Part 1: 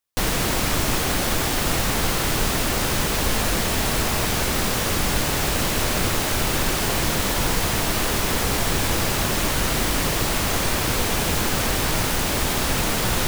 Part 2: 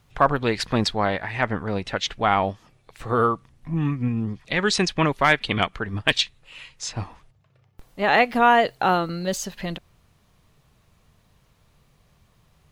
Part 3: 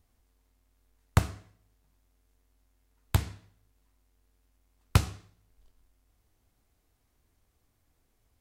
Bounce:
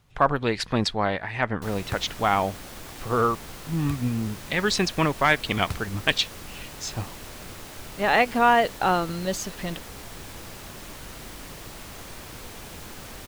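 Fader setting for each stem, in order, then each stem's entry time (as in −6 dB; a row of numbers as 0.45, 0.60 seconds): −18.5, −2.0, −10.5 decibels; 1.45, 0.00, 0.75 seconds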